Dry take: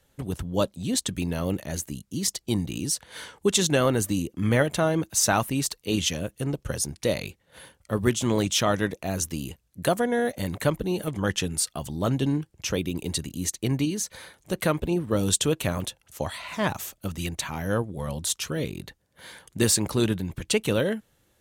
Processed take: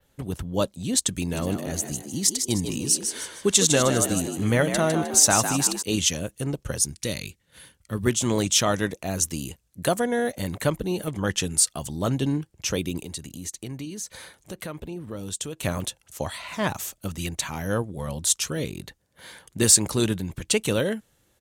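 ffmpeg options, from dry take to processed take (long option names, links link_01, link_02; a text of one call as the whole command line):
ffmpeg -i in.wav -filter_complex "[0:a]asplit=3[link_01][link_02][link_03];[link_01]afade=type=out:start_time=1.3:duration=0.02[link_04];[link_02]asplit=6[link_05][link_06][link_07][link_08][link_09][link_10];[link_06]adelay=154,afreqshift=62,volume=-7.5dB[link_11];[link_07]adelay=308,afreqshift=124,volume=-15.5dB[link_12];[link_08]adelay=462,afreqshift=186,volume=-23.4dB[link_13];[link_09]adelay=616,afreqshift=248,volume=-31.4dB[link_14];[link_10]adelay=770,afreqshift=310,volume=-39.3dB[link_15];[link_05][link_11][link_12][link_13][link_14][link_15]amix=inputs=6:normalize=0,afade=type=in:start_time=1.3:duration=0.02,afade=type=out:start_time=5.81:duration=0.02[link_16];[link_03]afade=type=in:start_time=5.81:duration=0.02[link_17];[link_04][link_16][link_17]amix=inputs=3:normalize=0,asettb=1/sr,asplit=3[link_18][link_19][link_20];[link_18]atrim=end=6.844[link_21];[link_19]atrim=start=6.84:end=8.06,asetpts=PTS-STARTPTS,afade=type=in:duration=0.004:curve=qsin,afade=type=out:start_time=1.216:duration=0.004:curve=qsin,equalizer=frequency=680:width=0.81:gain=-10[link_22];[link_20]atrim=start=8.056[link_23];[link_21][link_22]acrossfade=duration=0.004:curve1=hsin:curve2=qsin[link_24];[link_24][link_23]acrossfade=duration=0.004:curve1=qsin:curve2=hsin,asettb=1/sr,asplit=3[link_25][link_26][link_27];[link_25]atrim=end=13.004[link_28];[link_26]atrim=start=13:end=15.63,asetpts=PTS-STARTPTS,afade=type=in:duration=0.004:curve=qsin,afade=type=out:start_time=2.626:duration=0.004:curve=qsin,acompressor=threshold=-36dB:ratio=2.5:attack=3.2:release=140:knee=1:detection=peak[link_29];[link_27]atrim=start=15.626[link_30];[link_28][link_29]acrossfade=duration=0.004:curve1=hsin:curve2=qsin[link_31];[link_31][link_30]acrossfade=duration=0.004:curve1=qsin:curve2=hsin,adynamicequalizer=threshold=0.00794:dfrequency=7700:dqfactor=0.9:tfrequency=7700:tqfactor=0.9:attack=5:release=100:ratio=0.375:range=4:mode=boostabove:tftype=bell" out.wav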